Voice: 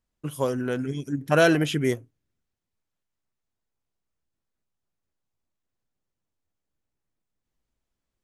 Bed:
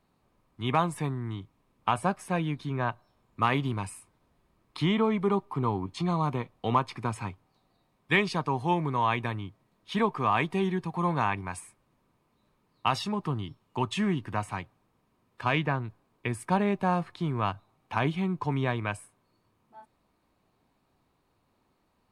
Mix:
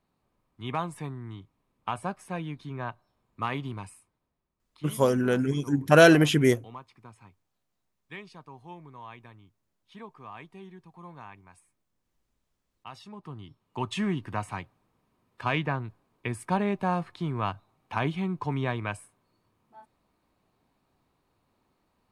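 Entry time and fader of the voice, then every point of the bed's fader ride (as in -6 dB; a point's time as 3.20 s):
4.60 s, +3.0 dB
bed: 3.77 s -5.5 dB
4.68 s -18.5 dB
12.84 s -18.5 dB
13.92 s -1 dB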